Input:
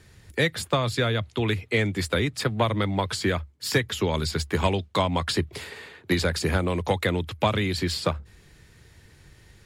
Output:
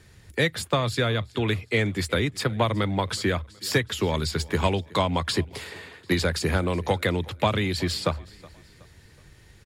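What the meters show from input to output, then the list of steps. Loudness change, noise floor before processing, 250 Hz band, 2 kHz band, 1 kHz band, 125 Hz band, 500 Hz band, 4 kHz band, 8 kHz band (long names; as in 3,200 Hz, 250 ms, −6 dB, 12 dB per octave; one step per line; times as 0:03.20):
0.0 dB, −54 dBFS, 0.0 dB, 0.0 dB, 0.0 dB, 0.0 dB, 0.0 dB, 0.0 dB, 0.0 dB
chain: repeating echo 371 ms, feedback 44%, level −23 dB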